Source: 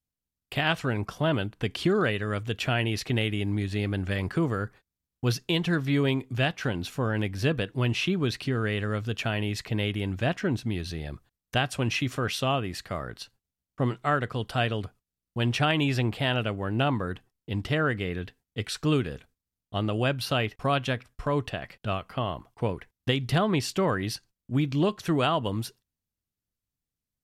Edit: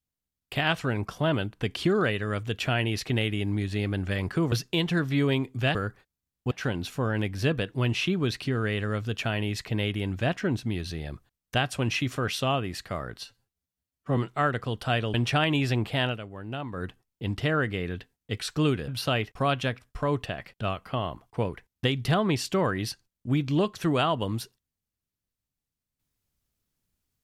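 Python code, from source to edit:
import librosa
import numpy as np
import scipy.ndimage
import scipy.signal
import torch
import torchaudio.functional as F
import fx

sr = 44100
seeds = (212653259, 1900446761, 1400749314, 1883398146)

y = fx.edit(x, sr, fx.move(start_s=4.52, length_s=0.76, to_s=6.51),
    fx.stretch_span(start_s=13.21, length_s=0.64, factor=1.5),
    fx.cut(start_s=14.82, length_s=0.59),
    fx.fade_down_up(start_s=16.32, length_s=0.79, db=-9.5, fade_s=0.14),
    fx.cut(start_s=19.15, length_s=0.97), tone=tone)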